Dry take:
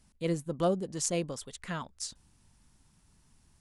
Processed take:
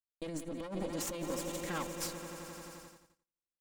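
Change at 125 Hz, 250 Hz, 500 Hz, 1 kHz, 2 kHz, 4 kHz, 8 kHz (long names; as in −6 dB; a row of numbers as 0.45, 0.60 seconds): −8.5, −4.5, −7.0, −3.5, −1.0, −3.0, −5.0 decibels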